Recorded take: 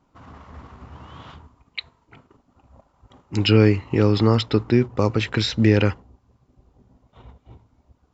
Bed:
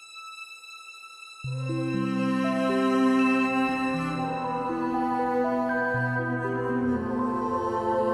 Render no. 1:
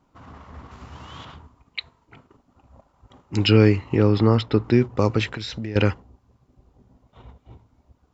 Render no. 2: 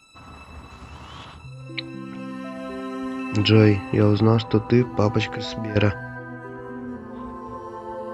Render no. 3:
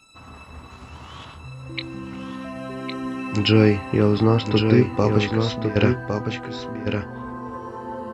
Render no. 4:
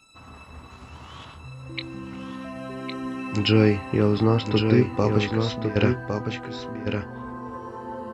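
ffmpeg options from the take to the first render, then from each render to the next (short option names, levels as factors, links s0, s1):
-filter_complex "[0:a]asettb=1/sr,asplit=3[s0][s1][s2];[s0]atrim=end=0.714[s3];[s1]atrim=start=0.71:end=1.25,asetpts=PTS-STARTPTS,afade=t=in:d=0.004:c=qsin,afade=t=out:st=0.536:d=0.004:c=qsin,highshelf=f=2500:g=11.5[s4];[s2]atrim=start=1.246[s5];[s3][s4]acrossfade=d=0.004:c1=hsin:c2=qsin[s6];[s6][s5]acrossfade=d=0.004:c1=qsin:c2=hsin,asettb=1/sr,asplit=3[s7][s8][s9];[s7]atrim=end=3.964[s10];[s8]atrim=start=3.96:end=4.64,asetpts=PTS-STARTPTS,afade=t=in:d=0.004:c=qsin,afade=t=out:st=0.676:d=0.004:c=qsin,highshelf=f=4000:g=-11[s11];[s9]atrim=start=4.636[s12];[s10][s11]acrossfade=d=0.004:c1=hsin:c2=qsin[s13];[s13][s12]acrossfade=d=0.004:c1=qsin:c2=hsin,asettb=1/sr,asplit=3[s14][s15][s16];[s14]atrim=end=5.274[s17];[s15]atrim=start=5.27:end=5.76,asetpts=PTS-STARTPTS,afade=t=in:d=0.004:c=qsin,afade=t=out:st=0.486:d=0.004:c=qsin,acompressor=threshold=0.0355:ratio=4:attack=3.2:release=140:knee=1:detection=peak[s18];[s16]atrim=start=5.756[s19];[s17][s18]acrossfade=d=0.004:c1=hsin:c2=qsin[s20];[s20][s19]acrossfade=d=0.004:c1=qsin:c2=hsin"
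-filter_complex "[1:a]volume=0.398[s0];[0:a][s0]amix=inputs=2:normalize=0"
-filter_complex "[0:a]asplit=2[s0][s1];[s1]adelay=24,volume=0.266[s2];[s0][s2]amix=inputs=2:normalize=0,aecho=1:1:1108:0.531"
-af "volume=0.75"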